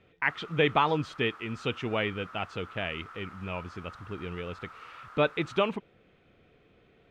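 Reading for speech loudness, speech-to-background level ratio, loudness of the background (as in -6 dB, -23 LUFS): -31.0 LUFS, 17.5 dB, -48.5 LUFS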